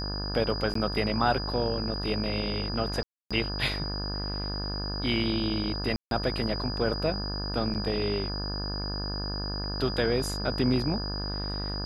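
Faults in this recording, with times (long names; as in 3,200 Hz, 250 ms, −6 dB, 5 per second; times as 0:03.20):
mains buzz 50 Hz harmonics 35 −34 dBFS
whistle 4,900 Hz −35 dBFS
0:00.74–0:00.75: drop-out 14 ms
0:03.03–0:03.31: drop-out 276 ms
0:05.96–0:06.11: drop-out 152 ms
0:07.74–0:07.75: drop-out 7.8 ms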